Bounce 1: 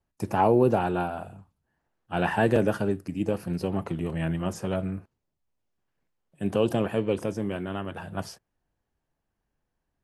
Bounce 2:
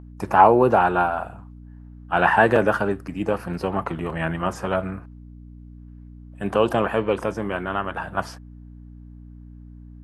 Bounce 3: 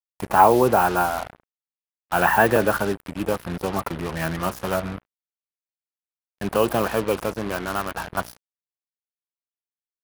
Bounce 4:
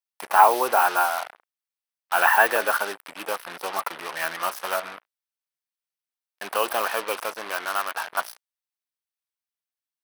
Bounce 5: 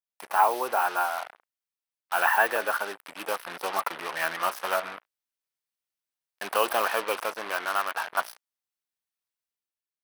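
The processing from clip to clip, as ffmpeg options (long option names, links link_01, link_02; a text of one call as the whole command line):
ffmpeg -i in.wav -af "aeval=exprs='val(0)+0.01*(sin(2*PI*60*n/s)+sin(2*PI*2*60*n/s)/2+sin(2*PI*3*60*n/s)/3+sin(2*PI*4*60*n/s)/4+sin(2*PI*5*60*n/s)/5)':channel_layout=same,equalizer=frequency=1200:width_type=o:width=2.1:gain=14.5,volume=-1dB" out.wav
ffmpeg -i in.wav -af "acrusher=bits=4:mix=0:aa=0.5,aexciter=amount=2.9:drive=3.5:freq=9900,volume=-1dB" out.wav
ffmpeg -i in.wav -af "highpass=830,bandreject=frequency=7000:width=8,volume=2.5dB" out.wav
ffmpeg -i in.wav -af "dynaudnorm=framelen=190:gausssize=7:maxgain=7.5dB,adynamicequalizer=threshold=0.0158:dfrequency=3800:dqfactor=0.7:tfrequency=3800:tqfactor=0.7:attack=5:release=100:ratio=0.375:range=2:mode=cutabove:tftype=highshelf,volume=-6.5dB" out.wav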